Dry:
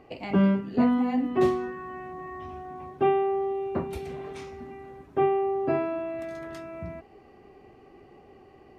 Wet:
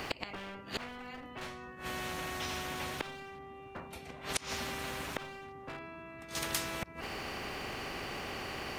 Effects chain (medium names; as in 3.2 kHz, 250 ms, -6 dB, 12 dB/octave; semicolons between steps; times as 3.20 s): one-sided clip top -22.5 dBFS, bottom -16.5 dBFS; inverted gate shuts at -28 dBFS, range -32 dB; spectrum-flattening compressor 4:1; trim +13.5 dB